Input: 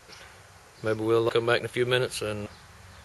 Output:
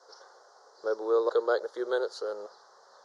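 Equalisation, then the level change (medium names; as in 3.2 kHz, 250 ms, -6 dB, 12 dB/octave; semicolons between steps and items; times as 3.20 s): elliptic band-pass 450–5400 Hz, stop band 80 dB; Butterworth band-stop 2.5 kHz, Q 0.66; 0.0 dB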